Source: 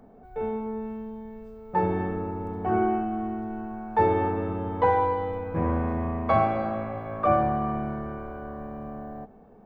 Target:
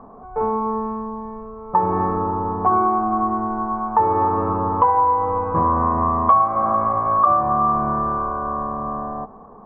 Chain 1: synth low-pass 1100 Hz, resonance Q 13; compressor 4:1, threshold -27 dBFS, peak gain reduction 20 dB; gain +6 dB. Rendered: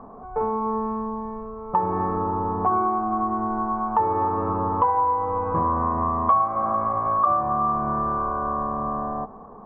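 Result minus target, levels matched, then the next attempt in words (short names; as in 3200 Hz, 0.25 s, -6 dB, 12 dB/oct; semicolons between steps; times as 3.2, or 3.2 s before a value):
compressor: peak gain reduction +4.5 dB
synth low-pass 1100 Hz, resonance Q 13; compressor 4:1, threshold -21 dBFS, peak gain reduction 15.5 dB; gain +6 dB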